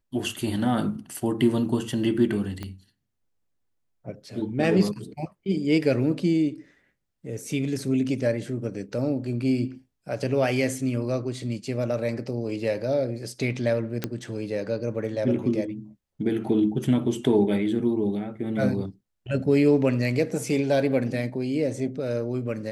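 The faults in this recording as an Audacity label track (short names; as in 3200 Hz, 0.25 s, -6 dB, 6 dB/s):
2.630000	2.630000	pop -20 dBFS
14.040000	14.040000	pop -12 dBFS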